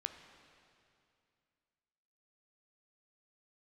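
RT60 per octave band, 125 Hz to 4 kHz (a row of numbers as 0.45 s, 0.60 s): 2.8 s, 2.7 s, 2.5 s, 2.4 s, 2.4 s, 2.3 s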